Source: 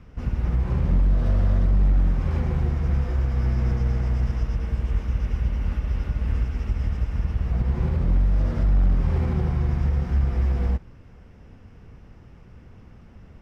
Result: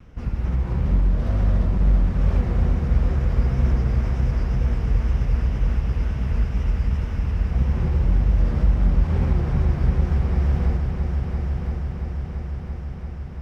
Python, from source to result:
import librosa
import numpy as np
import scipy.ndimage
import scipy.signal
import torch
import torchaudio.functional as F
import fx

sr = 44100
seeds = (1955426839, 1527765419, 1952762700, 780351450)

y = fx.wow_flutter(x, sr, seeds[0], rate_hz=2.1, depth_cents=84.0)
y = fx.echo_heads(y, sr, ms=339, heads='all three', feedback_pct=71, wet_db=-10.0)